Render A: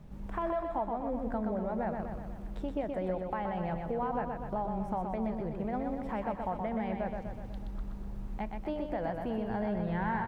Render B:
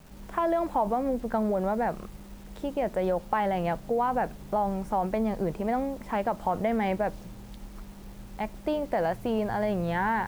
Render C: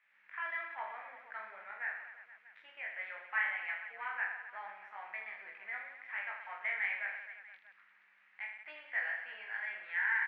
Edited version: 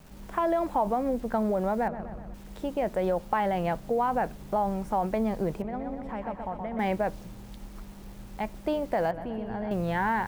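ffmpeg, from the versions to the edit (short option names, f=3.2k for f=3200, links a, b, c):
-filter_complex "[0:a]asplit=3[a][b][c];[1:a]asplit=4[d][e][f][g];[d]atrim=end=1.882[h];[a]atrim=start=1.878:end=2.342[i];[e]atrim=start=2.338:end=5.622[j];[b]atrim=start=5.618:end=6.792[k];[f]atrim=start=6.788:end=9.112[l];[c]atrim=start=9.108:end=9.712[m];[g]atrim=start=9.708[n];[h][i]acrossfade=d=0.004:c1=hsin:c2=hsin[o];[o][j]acrossfade=d=0.004:c1=hsin:c2=hsin[p];[p][k]acrossfade=d=0.004:c1=hsin:c2=hsin[q];[q][l]acrossfade=d=0.004:c1=hsin:c2=hsin[r];[r][m]acrossfade=d=0.004:c1=hsin:c2=hsin[s];[s][n]acrossfade=d=0.004:c1=hsin:c2=hsin"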